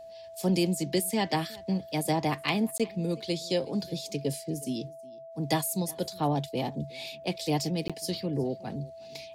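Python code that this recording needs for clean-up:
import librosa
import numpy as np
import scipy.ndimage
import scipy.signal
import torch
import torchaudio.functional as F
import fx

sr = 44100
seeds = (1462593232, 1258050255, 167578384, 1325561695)

y = fx.fix_declip(x, sr, threshold_db=-14.5)
y = fx.notch(y, sr, hz=660.0, q=30.0)
y = fx.fix_interpolate(y, sr, at_s=(2.78, 7.88), length_ms=16.0)
y = fx.fix_echo_inverse(y, sr, delay_ms=365, level_db=-23.0)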